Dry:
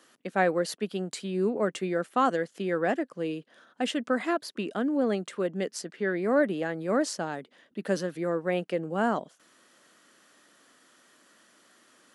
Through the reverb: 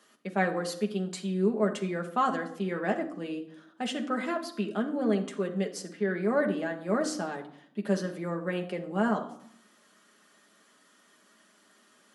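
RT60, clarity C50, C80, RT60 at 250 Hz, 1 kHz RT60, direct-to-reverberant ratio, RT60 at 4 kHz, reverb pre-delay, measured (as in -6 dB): 0.65 s, 11.5 dB, 15.5 dB, 0.95 s, 0.70 s, 1.5 dB, 0.45 s, 5 ms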